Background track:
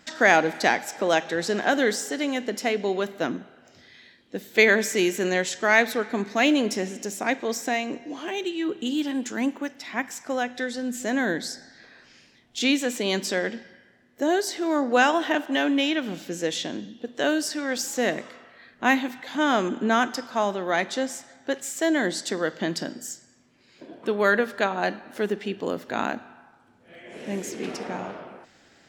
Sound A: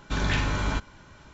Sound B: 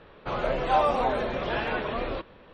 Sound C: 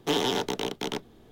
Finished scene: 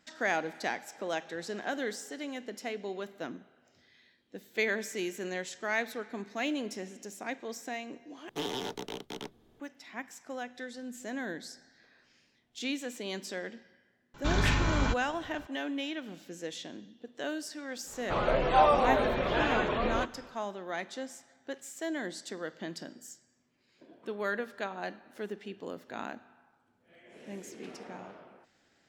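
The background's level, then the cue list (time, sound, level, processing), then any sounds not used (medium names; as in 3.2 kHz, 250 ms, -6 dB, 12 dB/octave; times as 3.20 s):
background track -12.5 dB
8.29 s: replace with C -9.5 dB
14.14 s: add A -1.5 dB
17.84 s: add B, fades 0.10 s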